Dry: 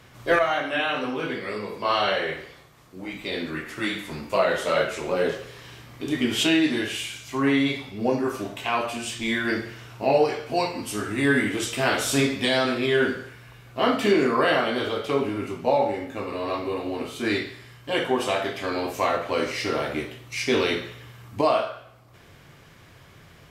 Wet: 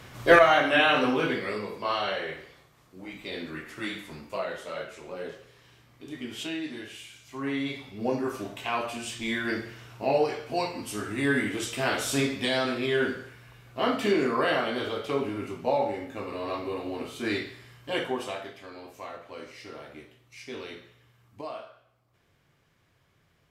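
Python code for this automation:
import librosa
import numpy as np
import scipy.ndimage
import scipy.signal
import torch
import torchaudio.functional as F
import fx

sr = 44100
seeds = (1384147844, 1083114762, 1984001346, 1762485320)

y = fx.gain(x, sr, db=fx.line((1.1, 4.0), (2.01, -6.5), (3.97, -6.5), (4.69, -13.5), (7.06, -13.5), (8.12, -4.5), (17.98, -4.5), (18.71, -17.0)))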